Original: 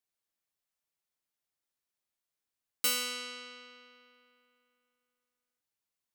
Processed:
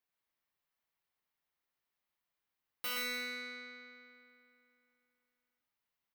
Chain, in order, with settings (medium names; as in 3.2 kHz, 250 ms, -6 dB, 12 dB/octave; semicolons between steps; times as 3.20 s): saturation -33.5 dBFS, distortion -6 dB; graphic EQ 1/2/8 kHz +3/+3/-12 dB; on a send: multi-tap echo 69/121/122/297 ms -19/-13.5/-5.5/-16.5 dB